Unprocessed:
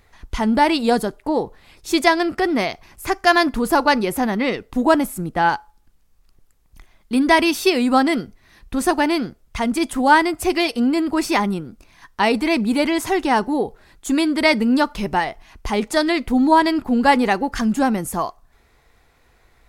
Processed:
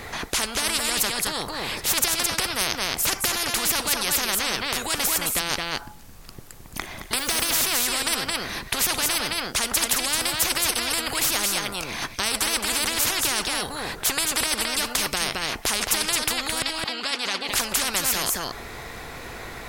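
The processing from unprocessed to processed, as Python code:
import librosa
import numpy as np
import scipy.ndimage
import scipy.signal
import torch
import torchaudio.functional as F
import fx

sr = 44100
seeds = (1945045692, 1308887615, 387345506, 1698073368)

p1 = fx.block_float(x, sr, bits=7, at=(7.18, 7.64))
p2 = fx.over_compress(p1, sr, threshold_db=-20.0, ratio=-1.0)
p3 = p1 + F.gain(torch.from_numpy(p2), 2.5).numpy()
p4 = fx.bandpass_q(p3, sr, hz=3400.0, q=1.8, at=(16.62, 17.49))
p5 = p4 + fx.echo_single(p4, sr, ms=218, db=-10.0, dry=0)
p6 = fx.spectral_comp(p5, sr, ratio=10.0)
y = F.gain(torch.from_numpy(p6), -5.0).numpy()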